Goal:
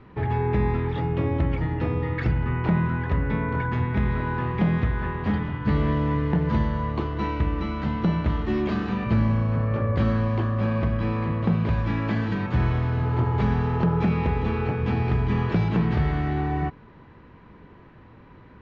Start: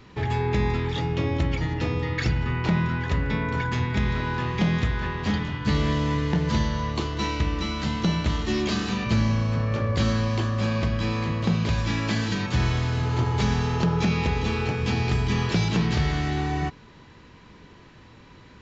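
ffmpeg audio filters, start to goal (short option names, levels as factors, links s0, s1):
-af "lowpass=1700,volume=1.12"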